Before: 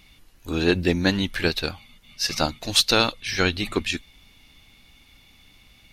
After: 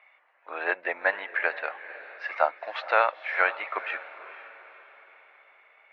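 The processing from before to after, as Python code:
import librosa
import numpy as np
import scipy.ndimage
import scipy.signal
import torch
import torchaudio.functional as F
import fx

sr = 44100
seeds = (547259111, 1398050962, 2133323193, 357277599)

y = scipy.signal.sosfilt(scipy.signal.ellip(3, 1.0, 70, [590.0, 2100.0], 'bandpass', fs=sr, output='sos'), x)
y = fx.echo_diffused(y, sr, ms=484, feedback_pct=43, wet_db=-14.5)
y = y * librosa.db_to_amplitude(3.5)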